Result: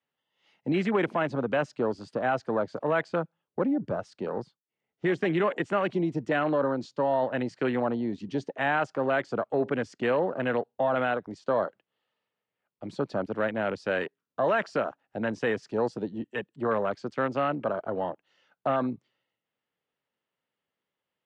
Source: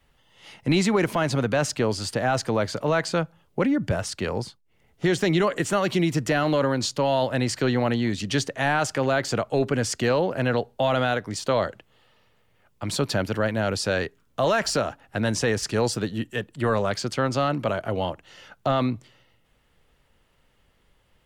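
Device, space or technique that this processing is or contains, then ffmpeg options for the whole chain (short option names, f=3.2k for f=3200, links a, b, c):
over-cleaned archive recording: -af "highpass=160,lowpass=5k,afwtdn=0.0316,lowshelf=f=100:g=-10,volume=-2.5dB"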